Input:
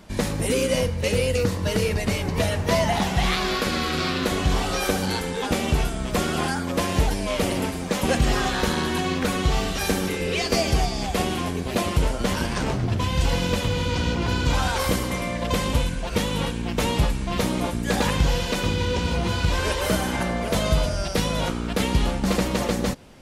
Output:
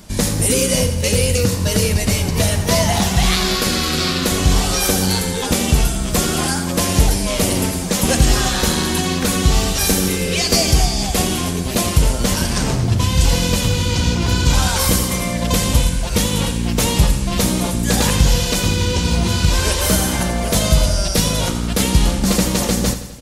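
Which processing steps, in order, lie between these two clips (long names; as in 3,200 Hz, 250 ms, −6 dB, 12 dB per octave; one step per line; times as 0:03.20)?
bass and treble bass +5 dB, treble +12 dB
repeating echo 86 ms, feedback 56%, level −11.5 dB
level +2.5 dB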